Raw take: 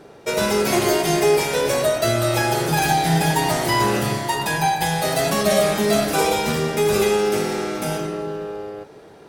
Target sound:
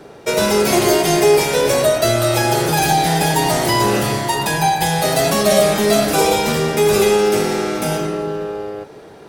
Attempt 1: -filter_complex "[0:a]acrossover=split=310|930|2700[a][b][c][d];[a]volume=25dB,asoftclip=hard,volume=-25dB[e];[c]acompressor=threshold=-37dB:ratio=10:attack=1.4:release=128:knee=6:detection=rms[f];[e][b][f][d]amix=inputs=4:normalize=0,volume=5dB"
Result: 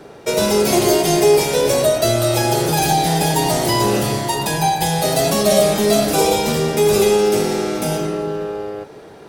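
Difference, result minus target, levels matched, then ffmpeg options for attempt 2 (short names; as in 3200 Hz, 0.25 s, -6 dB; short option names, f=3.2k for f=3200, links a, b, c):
compressor: peak gain reduction +9.5 dB
-filter_complex "[0:a]acrossover=split=310|930|2700[a][b][c][d];[a]volume=25dB,asoftclip=hard,volume=-25dB[e];[c]acompressor=threshold=-26.5dB:ratio=10:attack=1.4:release=128:knee=6:detection=rms[f];[e][b][f][d]amix=inputs=4:normalize=0,volume=5dB"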